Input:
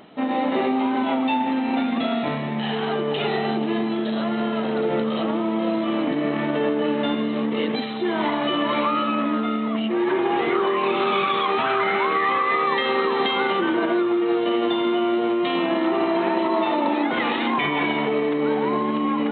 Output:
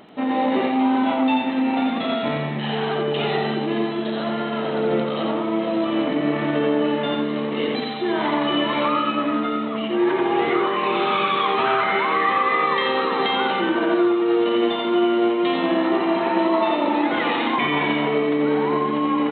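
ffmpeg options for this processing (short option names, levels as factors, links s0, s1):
-af "aecho=1:1:88:0.631"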